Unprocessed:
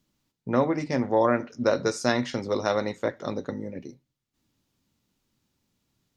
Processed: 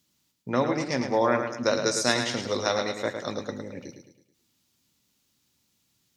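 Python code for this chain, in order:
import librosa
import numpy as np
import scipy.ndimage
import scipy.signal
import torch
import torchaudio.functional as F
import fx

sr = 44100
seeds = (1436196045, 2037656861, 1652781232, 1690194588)

p1 = scipy.signal.sosfilt(scipy.signal.butter(2, 49.0, 'highpass', fs=sr, output='sos'), x)
p2 = fx.high_shelf(p1, sr, hz=2100.0, db=11.5)
p3 = p2 + fx.echo_feedback(p2, sr, ms=108, feedback_pct=43, wet_db=-7.0, dry=0)
y = p3 * librosa.db_to_amplitude(-3.0)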